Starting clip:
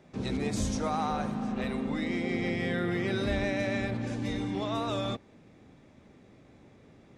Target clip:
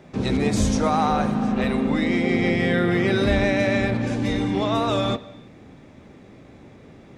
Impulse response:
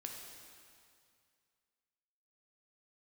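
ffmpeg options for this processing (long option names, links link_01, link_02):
-filter_complex "[0:a]asplit=2[link_01][link_02];[1:a]atrim=start_sample=2205,afade=type=out:start_time=0.38:duration=0.01,atrim=end_sample=17199,lowpass=4700[link_03];[link_02][link_03]afir=irnorm=-1:irlink=0,volume=-7.5dB[link_04];[link_01][link_04]amix=inputs=2:normalize=0,volume=8dB"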